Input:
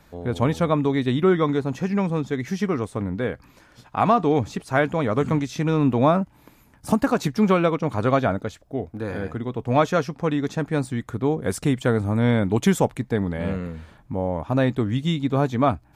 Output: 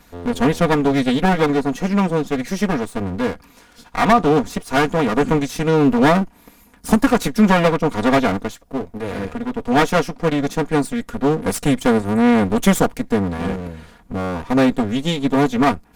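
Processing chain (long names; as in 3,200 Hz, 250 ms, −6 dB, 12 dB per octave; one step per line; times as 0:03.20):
lower of the sound and its delayed copy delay 4.2 ms
parametric band 11,000 Hz +4.5 dB 1.6 octaves
level +5.5 dB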